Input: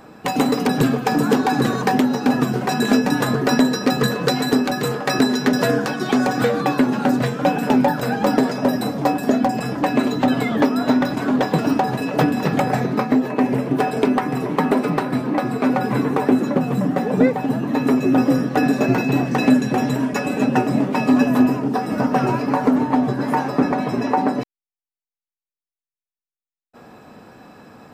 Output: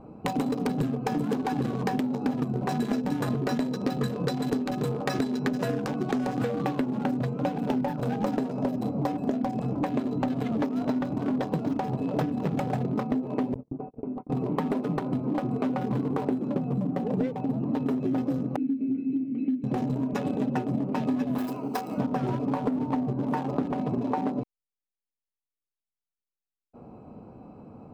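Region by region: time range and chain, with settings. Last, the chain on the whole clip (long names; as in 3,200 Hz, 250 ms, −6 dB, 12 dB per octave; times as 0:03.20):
0:02.59–0:04.08: floating-point word with a short mantissa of 8 bits + double-tracking delay 21 ms −11.5 dB
0:13.54–0:14.30: noise gate −20 dBFS, range −47 dB + head-to-tape spacing loss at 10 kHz 36 dB + downward compressor 4 to 1, threshold −30 dBFS
0:18.56–0:19.64: formant filter i + double-tracking delay 26 ms −9 dB
0:21.38–0:21.98: mu-law and A-law mismatch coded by A + spectral tilt +4.5 dB per octave
whole clip: adaptive Wiener filter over 25 samples; low-shelf EQ 170 Hz +7.5 dB; downward compressor, threshold −21 dBFS; level −3.5 dB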